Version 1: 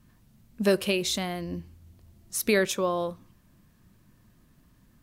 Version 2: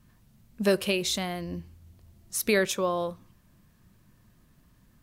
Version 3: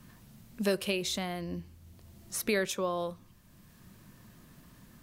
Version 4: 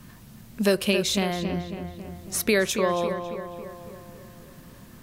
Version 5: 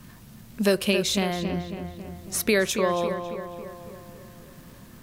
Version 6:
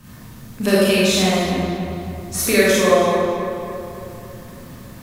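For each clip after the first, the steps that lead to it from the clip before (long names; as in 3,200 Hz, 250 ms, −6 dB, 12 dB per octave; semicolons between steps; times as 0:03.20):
parametric band 280 Hz −3 dB 0.72 octaves
multiband upward and downward compressor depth 40%; level −3.5 dB
feedback echo with a low-pass in the loop 275 ms, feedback 58%, low-pass 3,000 Hz, level −8 dB; level +7.5 dB
surface crackle 150 per second −44 dBFS
convolution reverb RT60 1.5 s, pre-delay 23 ms, DRR −8 dB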